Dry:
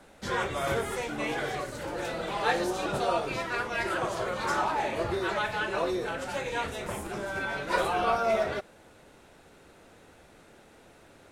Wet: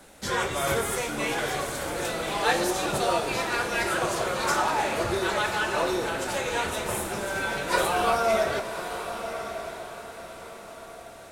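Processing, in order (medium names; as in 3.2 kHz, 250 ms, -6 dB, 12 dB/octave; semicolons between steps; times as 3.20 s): treble shelf 5.5 kHz +12 dB; echo that smears into a reverb 1093 ms, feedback 41%, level -9.5 dB; Schroeder reverb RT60 3.4 s, combs from 28 ms, DRR 10 dB; trim +2 dB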